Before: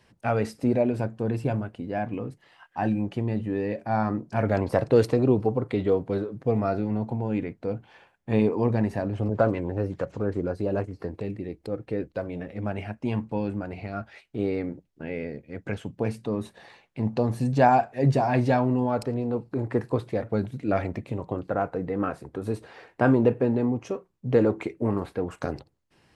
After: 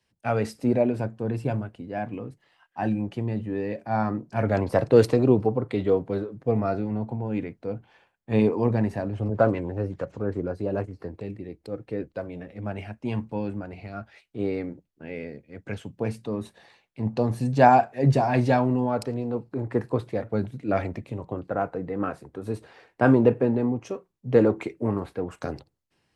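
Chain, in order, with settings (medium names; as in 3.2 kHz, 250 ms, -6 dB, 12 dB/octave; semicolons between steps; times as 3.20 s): three bands expanded up and down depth 40%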